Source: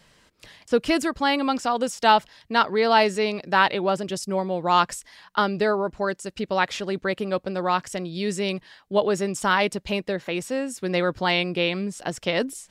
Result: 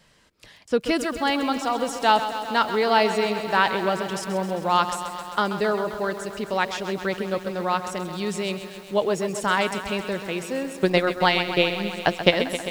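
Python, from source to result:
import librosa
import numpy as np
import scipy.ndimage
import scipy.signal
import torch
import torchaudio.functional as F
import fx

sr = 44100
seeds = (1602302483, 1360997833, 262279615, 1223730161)

y = fx.transient(x, sr, attack_db=12, sustain_db=-11, at=(10.64, 12.32))
y = fx.echo_crushed(y, sr, ms=132, feedback_pct=80, bits=7, wet_db=-10.5)
y = F.gain(torch.from_numpy(y), -1.5).numpy()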